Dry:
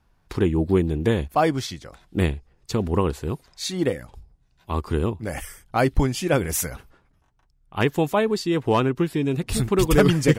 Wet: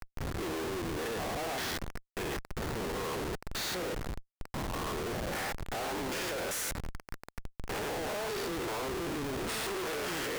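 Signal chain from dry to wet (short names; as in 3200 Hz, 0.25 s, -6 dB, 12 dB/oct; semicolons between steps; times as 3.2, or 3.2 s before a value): stepped spectrum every 0.2 s; Chebyshev high-pass 700 Hz, order 2; band noise 1300–2100 Hz -49 dBFS; Schmitt trigger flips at -39.5 dBFS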